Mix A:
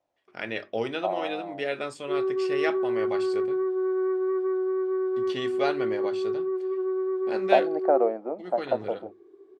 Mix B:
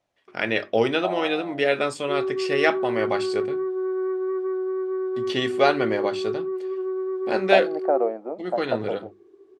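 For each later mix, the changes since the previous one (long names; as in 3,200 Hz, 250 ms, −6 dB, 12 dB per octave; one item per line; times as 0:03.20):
first voice +8.5 dB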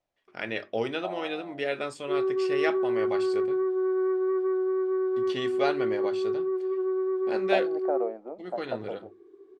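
first voice −8.5 dB
second voice −7.5 dB
master: remove high-pass filter 48 Hz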